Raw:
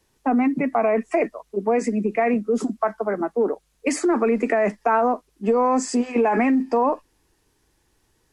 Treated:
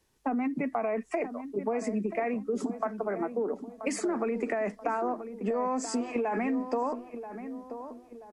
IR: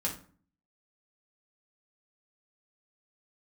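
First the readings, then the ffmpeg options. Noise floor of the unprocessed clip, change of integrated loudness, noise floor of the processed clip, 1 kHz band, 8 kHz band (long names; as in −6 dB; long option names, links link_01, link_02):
−67 dBFS, −10.0 dB, −55 dBFS, −10.0 dB, −7.5 dB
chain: -filter_complex "[0:a]acompressor=threshold=-21dB:ratio=6,asplit=2[link_01][link_02];[link_02]adelay=982,lowpass=frequency=1200:poles=1,volume=-10dB,asplit=2[link_03][link_04];[link_04]adelay=982,lowpass=frequency=1200:poles=1,volume=0.46,asplit=2[link_05][link_06];[link_06]adelay=982,lowpass=frequency=1200:poles=1,volume=0.46,asplit=2[link_07][link_08];[link_08]adelay=982,lowpass=frequency=1200:poles=1,volume=0.46,asplit=2[link_09][link_10];[link_10]adelay=982,lowpass=frequency=1200:poles=1,volume=0.46[link_11];[link_03][link_05][link_07][link_09][link_11]amix=inputs=5:normalize=0[link_12];[link_01][link_12]amix=inputs=2:normalize=0,volume=-5.5dB"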